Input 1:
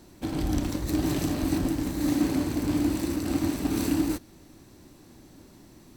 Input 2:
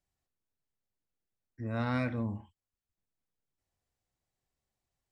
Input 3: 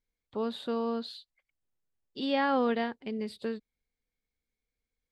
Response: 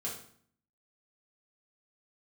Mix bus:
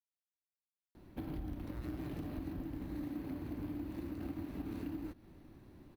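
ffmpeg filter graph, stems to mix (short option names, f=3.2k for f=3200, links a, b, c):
-filter_complex "[0:a]lowpass=2.9k,lowshelf=f=190:g=5,adelay=950,volume=-7.5dB[a];[1:a]alimiter=level_in=0.5dB:limit=-24dB:level=0:latency=1:release=176,volume=-0.5dB,volume=-1.5dB,acrusher=bits=4:mix=0:aa=0.5,acompressor=threshold=-52dB:ratio=2,volume=0dB[b];[a][b]amix=inputs=2:normalize=0,acrusher=samples=3:mix=1:aa=0.000001,acompressor=threshold=-39dB:ratio=6"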